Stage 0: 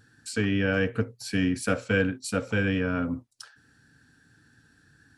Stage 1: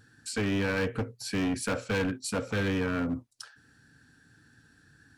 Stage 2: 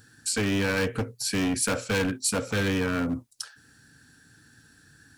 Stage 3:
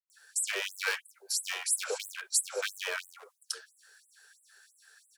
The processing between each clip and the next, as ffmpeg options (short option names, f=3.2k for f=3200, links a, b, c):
-af "asoftclip=type=hard:threshold=-25dB"
-af "highshelf=f=5.1k:g=11,volume=2.5dB"
-filter_complex "[0:a]acrossover=split=260|860[a][b][c];[c]adelay=100[d];[a]adelay=700[e];[e][b][d]amix=inputs=3:normalize=0,afftfilt=real='re*gte(b*sr/1024,360*pow(7900/360,0.5+0.5*sin(2*PI*3*pts/sr)))':imag='im*gte(b*sr/1024,360*pow(7900/360,0.5+0.5*sin(2*PI*3*pts/sr)))':win_size=1024:overlap=0.75"